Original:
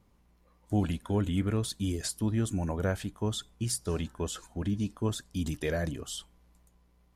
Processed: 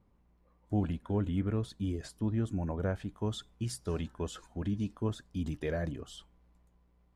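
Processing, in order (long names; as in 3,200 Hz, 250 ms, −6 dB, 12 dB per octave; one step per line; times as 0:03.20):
low-pass filter 1,400 Hz 6 dB per octave, from 0:03.09 3,400 Hz, from 0:05.04 1,900 Hz
level −2.5 dB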